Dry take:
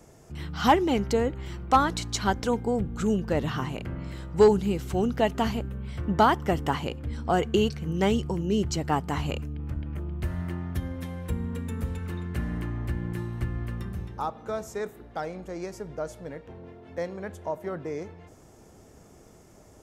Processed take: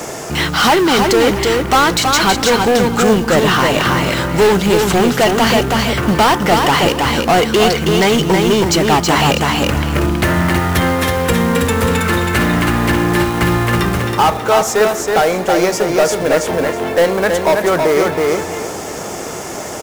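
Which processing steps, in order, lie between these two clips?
overdrive pedal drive 28 dB, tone 7300 Hz, clips at -10 dBFS; short-mantissa float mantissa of 2-bit; feedback echo 0.323 s, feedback 22%, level -4 dB; in parallel at +2 dB: vocal rider 0.5 s; on the sum: gain -1 dB

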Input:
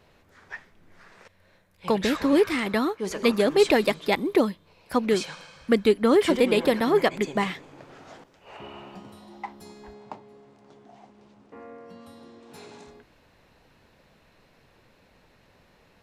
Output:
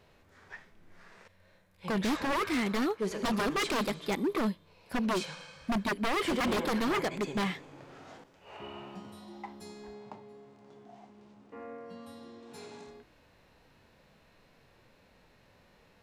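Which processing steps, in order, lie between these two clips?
harmonic-percussive split percussive -9 dB; wavefolder -24 dBFS

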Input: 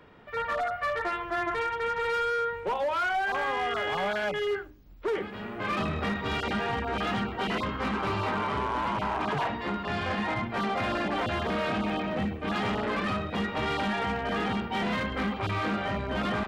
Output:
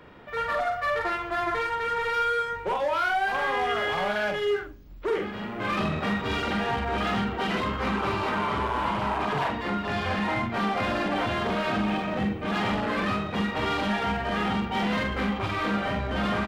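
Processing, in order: in parallel at -4.5 dB: soft clip -39.5 dBFS, distortion -6 dB; on the sum: doubler 44 ms -5 dB

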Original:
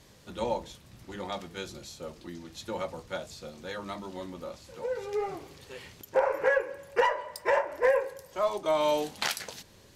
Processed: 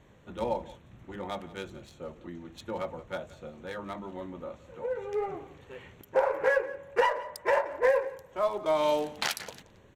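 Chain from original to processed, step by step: Wiener smoothing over 9 samples; on a send: echo 0.175 s -19 dB

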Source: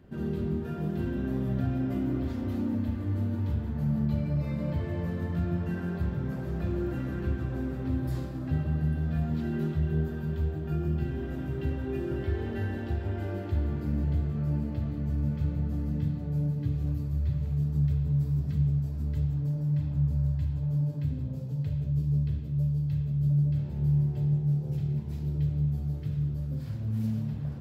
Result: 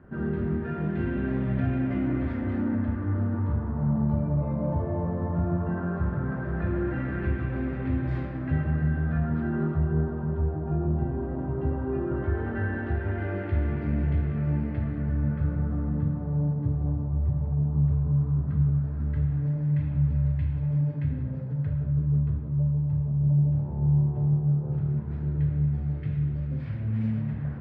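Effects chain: LFO low-pass sine 0.16 Hz 910–2200 Hz; band-limited delay 0.127 s, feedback 84%, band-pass 1000 Hz, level -13.5 dB; gain +2.5 dB

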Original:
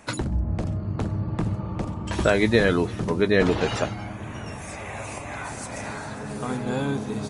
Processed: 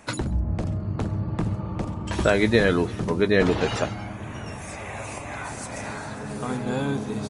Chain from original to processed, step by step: echo 0.135 s -23 dB

